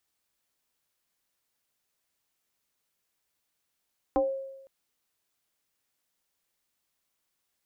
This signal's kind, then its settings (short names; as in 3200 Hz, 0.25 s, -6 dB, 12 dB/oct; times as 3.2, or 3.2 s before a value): FM tone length 0.51 s, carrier 539 Hz, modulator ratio 0.46, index 1.6, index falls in 0.25 s exponential, decay 0.97 s, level -19.5 dB